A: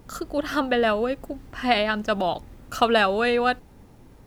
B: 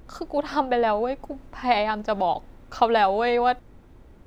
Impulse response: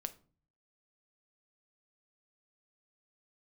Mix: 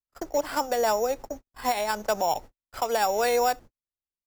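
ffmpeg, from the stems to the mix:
-filter_complex "[0:a]equalizer=f=260:t=o:w=0.79:g=5.5,acompressor=threshold=-20dB:ratio=6,volume=-12dB[a];[1:a]acrusher=samples=7:mix=1:aa=0.000001,adelay=2.2,volume=1dB,asplit=2[b][c];[c]apad=whole_len=188175[d];[a][d]sidechaingate=range=-33dB:threshold=-39dB:ratio=16:detection=peak[e];[e][b]amix=inputs=2:normalize=0,agate=range=-59dB:threshold=-35dB:ratio=16:detection=peak,acrossover=split=240|3000[f][g][h];[f]acompressor=threshold=-46dB:ratio=2[i];[i][g][h]amix=inputs=3:normalize=0,alimiter=limit=-14dB:level=0:latency=1:release=316"

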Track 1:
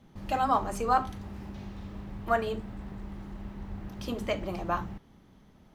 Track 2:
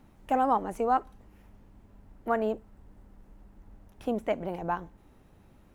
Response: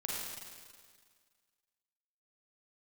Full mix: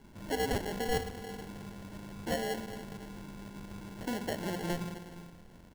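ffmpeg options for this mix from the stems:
-filter_complex "[0:a]highpass=110,volume=-3.5dB,asplit=2[a][b];[b]volume=-11.5dB[c];[1:a]acrossover=split=220|3000[d][e][f];[e]acompressor=threshold=-34dB:ratio=6[g];[d][g][f]amix=inputs=3:normalize=0,adelay=0.6,volume=-4dB,asplit=2[h][i];[i]volume=-4dB[j];[2:a]atrim=start_sample=2205[k];[c][j]amix=inputs=2:normalize=0[l];[l][k]afir=irnorm=-1:irlink=0[m];[a][h][m]amix=inputs=3:normalize=0,acrusher=samples=36:mix=1:aa=0.000001,acompressor=threshold=-38dB:ratio=1.5"

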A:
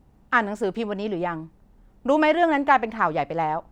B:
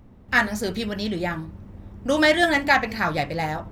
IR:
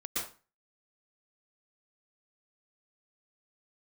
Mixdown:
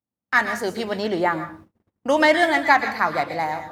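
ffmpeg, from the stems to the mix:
-filter_complex "[0:a]bandreject=f=2.4k:w=12,dynaudnorm=f=120:g=7:m=13.5dB,volume=-6.5dB,asplit=2[a][b];[b]volume=-17dB[c];[1:a]bandreject=f=400:w=12,volume=-5dB,asplit=2[d][e];[e]volume=-7.5dB[f];[2:a]atrim=start_sample=2205[g];[c][f]amix=inputs=2:normalize=0[h];[h][g]afir=irnorm=-1:irlink=0[i];[a][d][i]amix=inputs=3:normalize=0,highpass=95,agate=range=-33dB:threshold=-40dB:ratio=16:detection=peak,lowshelf=f=270:g=-7.5"

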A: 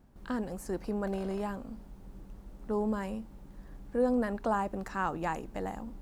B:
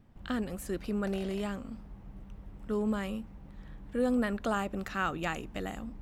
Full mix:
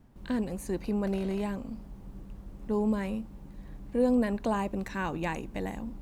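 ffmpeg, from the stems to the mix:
-filter_complex "[0:a]volume=0dB[a];[1:a]volume=-3.5dB[b];[a][b]amix=inputs=2:normalize=0"

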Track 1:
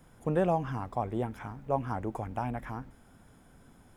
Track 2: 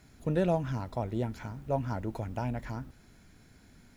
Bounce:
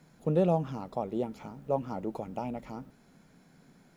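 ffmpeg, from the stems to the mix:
-filter_complex "[0:a]lowpass=f=1.2k:p=1,lowshelf=f=120:t=q:w=3:g=-9.5,volume=-3.5dB[a];[1:a]lowshelf=f=310:t=q:w=1.5:g=-11,volume=-4.5dB[b];[a][b]amix=inputs=2:normalize=0"

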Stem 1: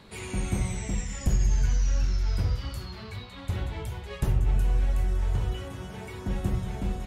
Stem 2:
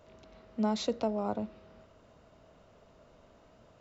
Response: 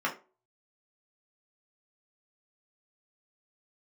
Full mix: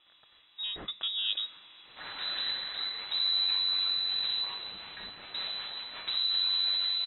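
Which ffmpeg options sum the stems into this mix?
-filter_complex "[0:a]aeval=exprs='abs(val(0))':c=same,adelay=1850,volume=-7dB[a];[1:a]afade=t=in:st=0.96:d=0.3:silence=0.375837[b];[a][b]amix=inputs=2:normalize=0,crystalizer=i=8:c=0,lowpass=f=3.4k:t=q:w=0.5098,lowpass=f=3.4k:t=q:w=0.6013,lowpass=f=3.4k:t=q:w=0.9,lowpass=f=3.4k:t=q:w=2.563,afreqshift=-4000"

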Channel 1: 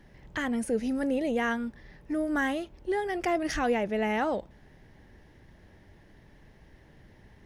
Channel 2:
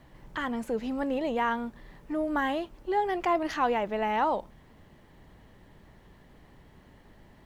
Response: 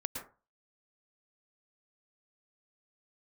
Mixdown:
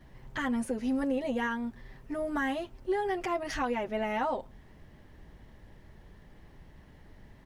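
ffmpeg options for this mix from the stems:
-filter_complex "[0:a]volume=-4.5dB[a];[1:a]lowshelf=f=100:g=9,adelay=7.7,volume=-4dB[b];[a][b]amix=inputs=2:normalize=0,alimiter=limit=-21.5dB:level=0:latency=1:release=240"

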